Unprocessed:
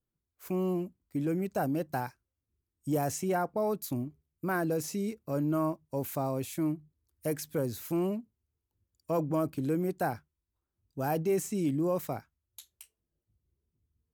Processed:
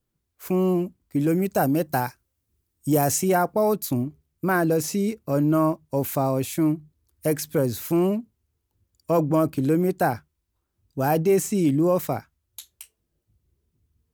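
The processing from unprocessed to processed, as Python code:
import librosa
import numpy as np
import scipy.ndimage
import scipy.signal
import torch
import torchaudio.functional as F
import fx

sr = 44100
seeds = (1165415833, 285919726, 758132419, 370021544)

y = fx.high_shelf(x, sr, hz=6300.0, db=7.0, at=(1.19, 3.75))
y = F.gain(torch.from_numpy(y), 9.0).numpy()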